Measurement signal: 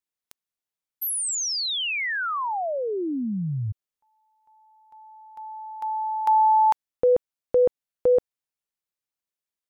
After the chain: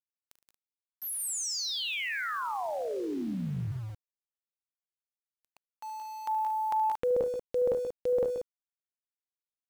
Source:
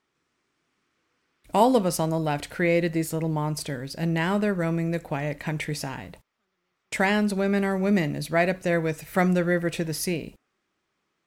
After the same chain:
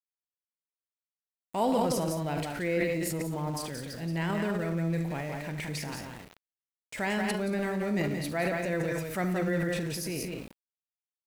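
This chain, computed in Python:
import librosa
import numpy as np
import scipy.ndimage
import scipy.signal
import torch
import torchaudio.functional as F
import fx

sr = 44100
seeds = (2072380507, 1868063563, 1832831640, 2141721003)

y = fx.echo_multitap(x, sr, ms=(41, 73, 114, 175, 192, 230), db=(-17.5, -13.0, -19.0, -6.0, -13.5, -15.0))
y = fx.transient(y, sr, attack_db=-3, sustain_db=9)
y = np.where(np.abs(y) >= 10.0 ** (-37.5 / 20.0), y, 0.0)
y = y * 10.0 ** (-8.0 / 20.0)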